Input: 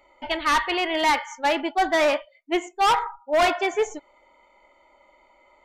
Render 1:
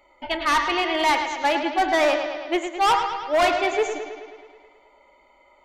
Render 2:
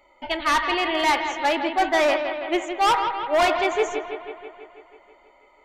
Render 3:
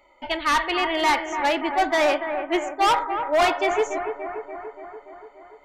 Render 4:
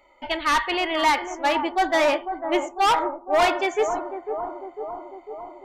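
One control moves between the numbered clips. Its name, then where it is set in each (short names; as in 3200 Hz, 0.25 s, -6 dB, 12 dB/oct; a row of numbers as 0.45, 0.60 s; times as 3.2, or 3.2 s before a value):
analogue delay, time: 0.107, 0.163, 0.289, 0.5 s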